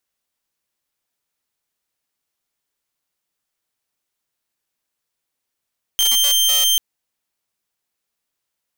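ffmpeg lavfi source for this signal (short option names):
-f lavfi -i "aevalsrc='0.282*(2*mod(3150*t,1)-1)':d=0.79:s=44100"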